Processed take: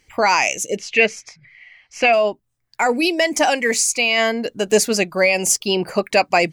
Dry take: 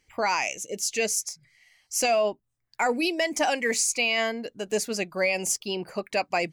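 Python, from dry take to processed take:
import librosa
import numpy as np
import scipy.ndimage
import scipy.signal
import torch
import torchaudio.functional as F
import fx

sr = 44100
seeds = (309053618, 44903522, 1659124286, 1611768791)

y = fx.rider(x, sr, range_db=3, speed_s=0.5)
y = fx.lowpass_res(y, sr, hz=2400.0, q=2.3, at=(0.76, 2.12), fade=0.02)
y = y * librosa.db_to_amplitude(9.0)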